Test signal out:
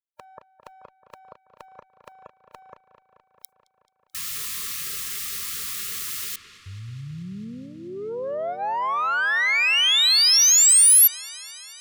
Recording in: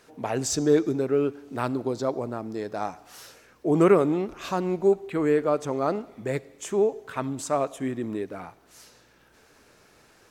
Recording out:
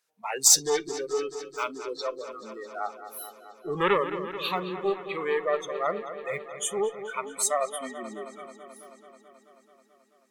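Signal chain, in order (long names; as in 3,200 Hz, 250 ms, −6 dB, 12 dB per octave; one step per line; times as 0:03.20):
one-sided soft clipper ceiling −19.5 dBFS
spectral tilt +3.5 dB per octave
noise reduction from a noise print of the clip's start 28 dB
parametric band 300 Hz −13 dB 0.45 octaves
delay with a low-pass on its return 217 ms, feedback 74%, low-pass 3,800 Hz, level −11.5 dB
level +3.5 dB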